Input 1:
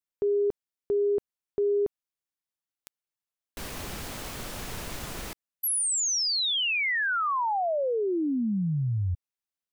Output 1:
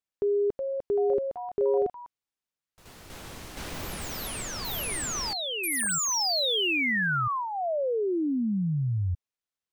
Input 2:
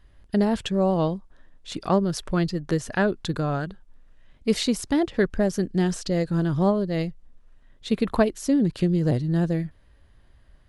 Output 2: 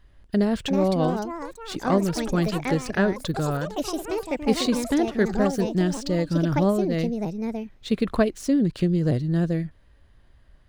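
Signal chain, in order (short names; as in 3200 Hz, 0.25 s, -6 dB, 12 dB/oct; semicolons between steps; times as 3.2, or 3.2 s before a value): median filter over 3 samples; dynamic EQ 870 Hz, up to -7 dB, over -45 dBFS, Q 3.9; echoes that change speed 0.426 s, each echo +5 st, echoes 3, each echo -6 dB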